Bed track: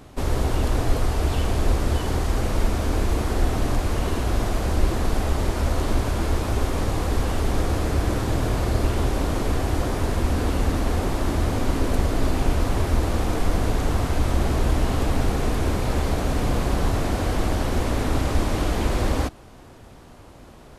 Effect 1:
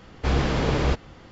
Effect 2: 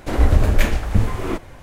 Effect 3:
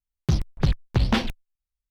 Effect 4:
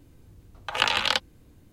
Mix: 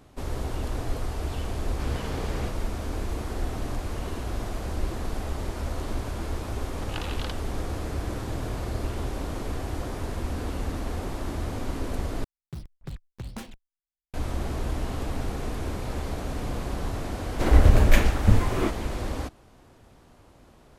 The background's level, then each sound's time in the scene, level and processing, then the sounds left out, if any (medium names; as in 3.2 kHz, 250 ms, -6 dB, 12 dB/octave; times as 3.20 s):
bed track -8.5 dB
1.55 s: add 1 -11.5 dB
6.14 s: add 4 -15.5 dB
12.24 s: replace with 3 -16.5 dB + tracing distortion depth 0.24 ms
17.33 s: add 2 -1.5 dB